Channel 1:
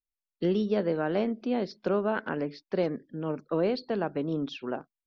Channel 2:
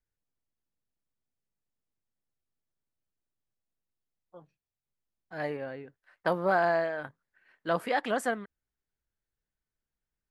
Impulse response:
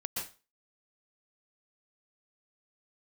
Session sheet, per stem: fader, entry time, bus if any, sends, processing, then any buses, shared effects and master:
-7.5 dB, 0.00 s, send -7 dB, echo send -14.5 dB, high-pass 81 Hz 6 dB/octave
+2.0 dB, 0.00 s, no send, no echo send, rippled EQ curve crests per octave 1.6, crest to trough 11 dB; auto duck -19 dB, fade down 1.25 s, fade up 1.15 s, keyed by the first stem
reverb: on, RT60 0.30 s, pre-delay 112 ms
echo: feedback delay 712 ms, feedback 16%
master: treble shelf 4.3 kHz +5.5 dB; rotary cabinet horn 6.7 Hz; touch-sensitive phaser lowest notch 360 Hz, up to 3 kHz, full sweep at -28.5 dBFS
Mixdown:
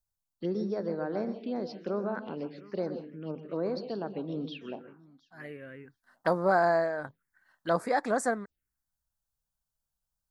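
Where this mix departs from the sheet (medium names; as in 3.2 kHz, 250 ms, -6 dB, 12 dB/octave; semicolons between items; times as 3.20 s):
stem 2: missing rippled EQ curve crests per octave 1.6, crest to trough 11 dB; master: missing rotary cabinet horn 6.7 Hz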